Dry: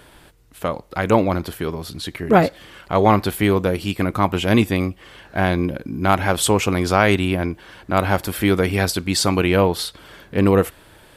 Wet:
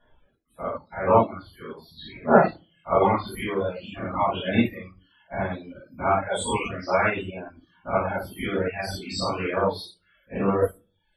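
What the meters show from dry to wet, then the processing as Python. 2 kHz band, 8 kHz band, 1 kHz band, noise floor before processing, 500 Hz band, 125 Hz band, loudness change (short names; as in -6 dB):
-6.5 dB, -13.0 dB, -3.5 dB, -49 dBFS, -4.5 dB, -11.0 dB, -5.5 dB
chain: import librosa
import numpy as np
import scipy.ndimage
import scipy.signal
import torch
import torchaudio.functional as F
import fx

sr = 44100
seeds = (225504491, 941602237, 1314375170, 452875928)

y = fx.spec_dilate(x, sr, span_ms=120)
y = fx.dereverb_blind(y, sr, rt60_s=0.93)
y = fx.spec_topn(y, sr, count=64)
y = fx.room_shoebox(y, sr, seeds[0], volume_m3=280.0, walls='furnished', distance_m=6.3)
y = fx.dereverb_blind(y, sr, rt60_s=0.65)
y = fx.low_shelf(y, sr, hz=250.0, db=-4.5)
y = fx.upward_expand(y, sr, threshold_db=-23.0, expansion=1.5)
y = y * 10.0 ** (-14.0 / 20.0)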